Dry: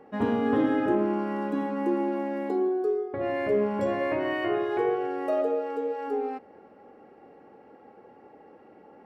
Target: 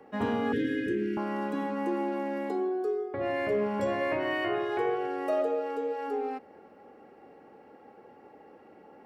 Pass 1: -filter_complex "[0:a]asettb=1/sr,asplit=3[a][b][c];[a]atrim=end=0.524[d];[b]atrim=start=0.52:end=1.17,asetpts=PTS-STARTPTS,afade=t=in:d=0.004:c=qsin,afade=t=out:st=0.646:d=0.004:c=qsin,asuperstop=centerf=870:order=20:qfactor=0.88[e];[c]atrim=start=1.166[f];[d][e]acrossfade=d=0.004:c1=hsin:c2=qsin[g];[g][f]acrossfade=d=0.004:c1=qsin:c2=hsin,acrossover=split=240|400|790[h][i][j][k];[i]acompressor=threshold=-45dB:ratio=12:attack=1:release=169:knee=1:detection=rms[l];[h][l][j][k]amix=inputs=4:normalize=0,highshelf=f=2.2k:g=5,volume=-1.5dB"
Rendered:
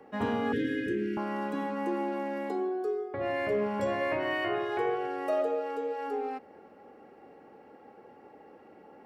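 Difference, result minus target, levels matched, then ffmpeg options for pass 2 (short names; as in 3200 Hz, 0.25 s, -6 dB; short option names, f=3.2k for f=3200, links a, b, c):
compressor: peak gain reduction +8 dB
-filter_complex "[0:a]asettb=1/sr,asplit=3[a][b][c];[a]atrim=end=0.524[d];[b]atrim=start=0.52:end=1.17,asetpts=PTS-STARTPTS,afade=t=in:d=0.004:c=qsin,afade=t=out:st=0.646:d=0.004:c=qsin,asuperstop=centerf=870:order=20:qfactor=0.88[e];[c]atrim=start=1.166[f];[d][e]acrossfade=d=0.004:c1=hsin:c2=qsin[g];[g][f]acrossfade=d=0.004:c1=qsin:c2=hsin,acrossover=split=240|400|790[h][i][j][k];[i]acompressor=threshold=-36dB:ratio=12:attack=1:release=169:knee=1:detection=rms[l];[h][l][j][k]amix=inputs=4:normalize=0,highshelf=f=2.2k:g=5,volume=-1.5dB"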